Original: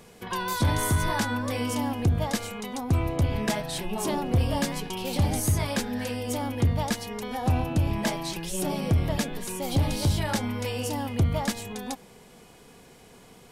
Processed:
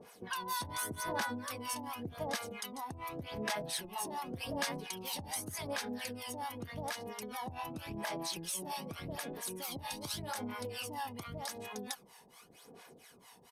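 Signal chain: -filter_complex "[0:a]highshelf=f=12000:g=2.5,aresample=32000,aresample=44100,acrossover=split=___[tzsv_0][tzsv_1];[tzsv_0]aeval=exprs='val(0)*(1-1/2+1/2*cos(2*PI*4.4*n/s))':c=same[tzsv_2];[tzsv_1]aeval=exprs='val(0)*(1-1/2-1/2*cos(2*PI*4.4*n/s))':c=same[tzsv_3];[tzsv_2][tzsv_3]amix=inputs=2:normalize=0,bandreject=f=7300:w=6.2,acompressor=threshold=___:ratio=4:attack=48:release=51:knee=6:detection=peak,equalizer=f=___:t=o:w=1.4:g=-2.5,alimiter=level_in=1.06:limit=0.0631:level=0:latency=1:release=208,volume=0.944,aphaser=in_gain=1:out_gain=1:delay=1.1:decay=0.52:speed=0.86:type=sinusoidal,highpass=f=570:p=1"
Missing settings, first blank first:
690, 0.0112, 2600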